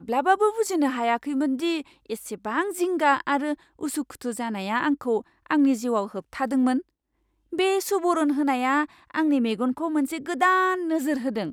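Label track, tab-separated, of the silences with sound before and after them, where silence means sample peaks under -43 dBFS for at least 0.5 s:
6.820000	7.520000	silence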